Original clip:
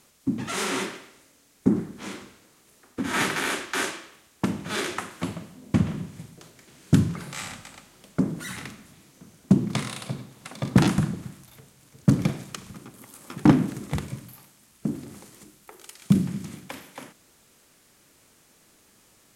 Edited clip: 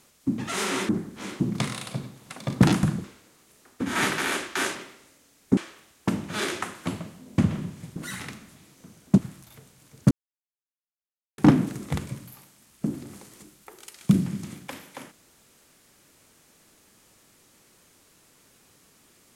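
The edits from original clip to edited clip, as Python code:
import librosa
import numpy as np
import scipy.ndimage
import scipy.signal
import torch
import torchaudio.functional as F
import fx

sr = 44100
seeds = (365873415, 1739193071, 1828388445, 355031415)

y = fx.edit(x, sr, fx.move(start_s=0.89, length_s=0.82, to_s=3.93),
    fx.cut(start_s=6.32, length_s=2.01),
    fx.move(start_s=9.55, length_s=1.64, to_s=2.22),
    fx.silence(start_s=12.12, length_s=1.27), tone=tone)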